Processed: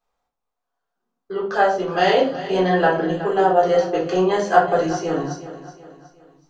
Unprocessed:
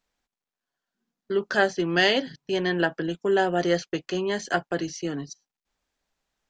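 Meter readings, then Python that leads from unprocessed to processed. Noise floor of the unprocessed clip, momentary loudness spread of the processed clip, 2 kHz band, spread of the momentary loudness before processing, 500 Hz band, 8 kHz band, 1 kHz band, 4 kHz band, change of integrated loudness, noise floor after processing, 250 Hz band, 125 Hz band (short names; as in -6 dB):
under -85 dBFS, 12 LU, +1.0 dB, 9 LU, +7.5 dB, n/a, +11.5 dB, -1.5 dB, +6.0 dB, -80 dBFS, +4.0 dB, +5.0 dB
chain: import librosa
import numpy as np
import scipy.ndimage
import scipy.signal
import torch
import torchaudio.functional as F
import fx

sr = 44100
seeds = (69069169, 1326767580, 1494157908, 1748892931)

p1 = fx.band_shelf(x, sr, hz=770.0, db=10.5, octaves=1.7)
p2 = fx.rider(p1, sr, range_db=3, speed_s=0.5)
p3 = p2 + fx.echo_feedback(p2, sr, ms=370, feedback_pct=43, wet_db=-14, dry=0)
p4 = fx.room_shoebox(p3, sr, seeds[0], volume_m3=460.0, walls='furnished', distance_m=3.8)
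y = p4 * librosa.db_to_amplitude(-5.5)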